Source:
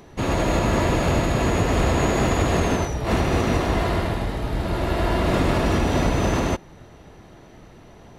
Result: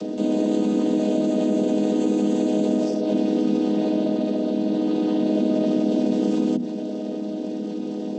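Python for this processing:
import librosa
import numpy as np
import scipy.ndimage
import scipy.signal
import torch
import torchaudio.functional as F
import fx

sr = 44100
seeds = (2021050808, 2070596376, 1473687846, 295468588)

y = fx.chord_vocoder(x, sr, chord='minor triad', root=56)
y = scipy.signal.sosfilt(scipy.signal.butter(2, 140.0, 'highpass', fs=sr, output='sos'), y)
y = fx.band_shelf(y, sr, hz=1400.0, db=-15.5, octaves=1.7)
y = fx.hum_notches(y, sr, base_hz=60, count=4)
y = fx.env_flatten(y, sr, amount_pct=70)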